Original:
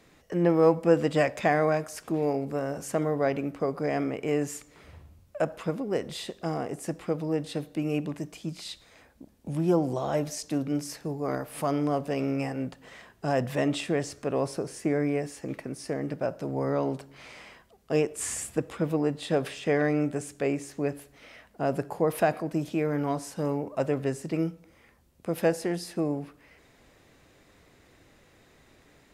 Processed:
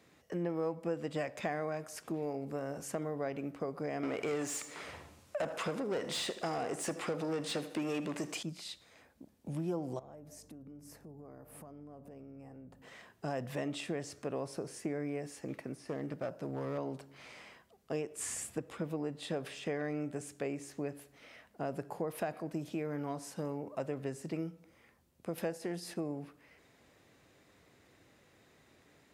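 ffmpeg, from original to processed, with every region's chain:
ffmpeg -i in.wav -filter_complex "[0:a]asettb=1/sr,asplit=3[link_01][link_02][link_03];[link_01]atrim=end=4.034[link_04];[link_02]atrim=start=4.03:end=8.43,asetpts=PTS-STARTPTS,afade=type=in:duration=0.004:curve=qsin,afade=type=out:start_time=4.396:duration=0.004:curve=qsin,equalizer=frequency=8200:width_type=o:width=1.5:gain=8.5,asplit=2[link_05][link_06];[link_06]highpass=frequency=720:poles=1,volume=22dB,asoftclip=type=tanh:threshold=-14.5dB[link_07];[link_05][link_07]amix=inputs=2:normalize=0,lowpass=frequency=2600:poles=1,volume=-6dB,aecho=1:1:78|156|234:0.158|0.0507|0.0162,atrim=end_sample=194040[link_08];[link_03]atrim=start=8.426[link_09];[link_04][link_08]acrossfade=duration=0.004:curve1=hsin:curve2=qsin[link_10];[link_10][link_09]acrossfade=duration=0.004:curve1=qsin:curve2=hsin,asettb=1/sr,asplit=3[link_11][link_12][link_13];[link_11]atrim=end=9.994[link_14];[link_12]atrim=start=9.99:end=12.82,asetpts=PTS-STARTPTS,afade=type=in:duration=0.004:curve=qsin,afade=type=out:start_time=2.826:duration=0.004:curve=qsin,equalizer=frequency=3700:width=0.44:gain=-14,acompressor=threshold=-42dB:ratio=12:attack=3.2:release=140:knee=1:detection=peak,aeval=exprs='val(0)+0.00178*(sin(2*PI*50*n/s)+sin(2*PI*2*50*n/s)/2+sin(2*PI*3*50*n/s)/3+sin(2*PI*4*50*n/s)/4+sin(2*PI*5*50*n/s)/5)':channel_layout=same[link_15];[link_13]atrim=start=12.816[link_16];[link_14][link_15]acrossfade=duration=0.004:curve1=hsin:curve2=qsin[link_17];[link_17][link_16]acrossfade=duration=0.004:curve1=qsin:curve2=hsin,asettb=1/sr,asplit=3[link_18][link_19][link_20];[link_18]atrim=end=15.734[link_21];[link_19]atrim=start=15.73:end=16.78,asetpts=PTS-STARTPTS,afade=type=in:duration=0.004:curve=qsin,afade=type=out:start_time=1.046:duration=0.004:curve=qsin,acrossover=split=3100[link_22][link_23];[link_23]acompressor=threshold=-51dB:ratio=4:attack=1:release=60[link_24];[link_22][link_24]amix=inputs=2:normalize=0,aeval=exprs='clip(val(0),-1,0.0562)':channel_layout=same[link_25];[link_20]atrim=start=16.776[link_26];[link_21][link_25]acrossfade=duration=0.004:curve1=hsin:curve2=qsin[link_27];[link_27][link_26]acrossfade=duration=0.004:curve1=qsin:curve2=hsin,asettb=1/sr,asplit=3[link_28][link_29][link_30];[link_28]atrim=end=25.384[link_31];[link_29]atrim=start=25.38:end=25.94,asetpts=PTS-STARTPTS,afade=type=in:duration=0.004:curve=qsin,afade=type=out:start_time=0.556:duration=0.004:curve=qsin,agate=range=-7dB:threshold=-37dB:ratio=16:release=100:detection=peak,acompressor=mode=upward:threshold=-28dB:ratio=2.5:attack=3.2:release=140:knee=2.83:detection=peak[link_32];[link_30]atrim=start=25.936[link_33];[link_31][link_32]acrossfade=duration=0.004:curve1=hsin:curve2=qsin[link_34];[link_34][link_33]acrossfade=duration=0.004:curve1=qsin:curve2=hsin,highpass=79,acompressor=threshold=-29dB:ratio=3,volume=-5.5dB" out.wav

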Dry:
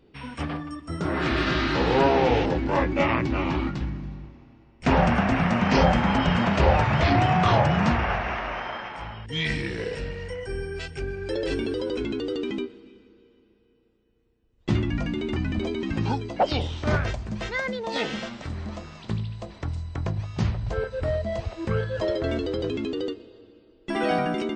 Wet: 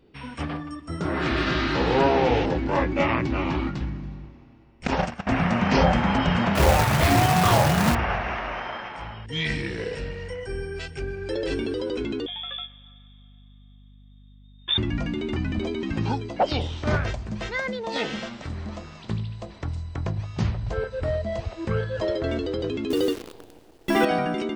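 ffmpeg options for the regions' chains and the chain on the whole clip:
ffmpeg -i in.wav -filter_complex "[0:a]asettb=1/sr,asplit=3[link_01][link_02][link_03];[link_01]atrim=end=4.874[link_04];[link_02]atrim=start=4.87:end=5.27,asetpts=PTS-STARTPTS,afade=type=in:duration=0.004:curve=qsin,afade=type=out:start_time=0.396:duration=0.004:curve=qsin,agate=range=-21dB:threshold=-19dB:ratio=16:release=100:detection=peak,bass=frequency=250:gain=-3,treble=frequency=4000:gain=13[link_05];[link_03]atrim=start=5.266[link_06];[link_04][link_05]acrossfade=duration=0.004:curve1=hsin:curve2=qsin[link_07];[link_07][link_06]acrossfade=duration=0.004:curve1=qsin:curve2=hsin,asettb=1/sr,asplit=3[link_08][link_09][link_10];[link_08]atrim=end=6.554[link_11];[link_09]atrim=start=6.55:end=7.95,asetpts=PTS-STARTPTS,afade=type=in:duration=0.004:curve=qsin,afade=type=out:start_time=1.396:duration=0.004:curve=qsin,aeval=exprs='val(0)+0.5*0.0211*sgn(val(0))':channel_layout=same,acrusher=bits=2:mode=log:mix=0:aa=0.000001[link_12];[link_10]atrim=start=7.946[link_13];[link_11][link_12]acrossfade=duration=0.004:curve1=hsin:curve2=qsin[link_14];[link_14][link_13]acrossfade=duration=0.004:curve1=qsin:curve2=hsin,asettb=1/sr,asplit=3[link_15][link_16][link_17];[link_15]atrim=end=12.264[link_18];[link_16]atrim=start=12.26:end=14.78,asetpts=PTS-STARTPTS,afade=type=in:duration=0.004:curve=qsin,afade=type=out:start_time=2.516:duration=0.004:curve=qsin,equalizer=frequency=430:width_type=o:width=1.6:gain=-7.5,lowpass=frequency=3100:width_type=q:width=0.5098,lowpass=frequency=3100:width_type=q:width=0.6013,lowpass=frequency=3100:width_type=q:width=0.9,lowpass=frequency=3100:width_type=q:width=2.563,afreqshift=-3700,aeval=exprs='val(0)+0.00355*(sin(2*PI*50*n/s)+sin(2*PI*2*50*n/s)/2+sin(2*PI*3*50*n/s)/3+sin(2*PI*4*50*n/s)/4+sin(2*PI*5*50*n/s)/5)':channel_layout=same[link_19];[link_17]atrim=start=14.776[link_20];[link_18][link_19]acrossfade=duration=0.004:curve1=hsin:curve2=qsin[link_21];[link_21][link_20]acrossfade=duration=0.004:curve1=qsin:curve2=hsin,asettb=1/sr,asplit=3[link_22][link_23][link_24];[link_22]atrim=end=22.904[link_25];[link_23]atrim=start=22.9:end=24.05,asetpts=PTS-STARTPTS,afade=type=in:duration=0.004:curve=qsin,afade=type=out:start_time=1.146:duration=0.004:curve=qsin,acrusher=bits=8:dc=4:mix=0:aa=0.000001,acontrast=67[link_26];[link_24]atrim=start=24.046[link_27];[link_25][link_26]acrossfade=duration=0.004:curve1=hsin:curve2=qsin[link_28];[link_28][link_27]acrossfade=duration=0.004:curve1=qsin:curve2=hsin" out.wav

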